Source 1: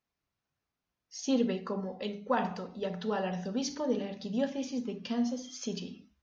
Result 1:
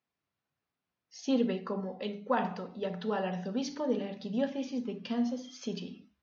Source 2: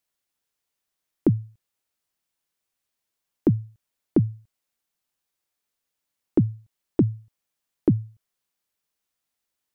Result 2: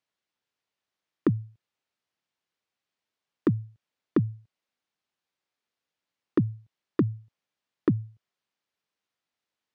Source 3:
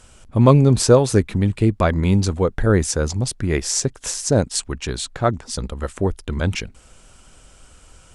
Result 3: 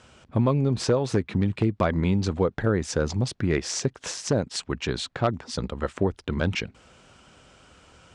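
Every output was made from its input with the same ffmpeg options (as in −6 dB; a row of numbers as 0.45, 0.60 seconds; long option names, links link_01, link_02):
-af "acompressor=threshold=-17dB:ratio=12,aeval=exprs='0.251*(abs(mod(val(0)/0.251+3,4)-2)-1)':channel_layout=same,highpass=100,lowpass=4400"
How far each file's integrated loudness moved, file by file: 0.0, −4.0, −7.0 LU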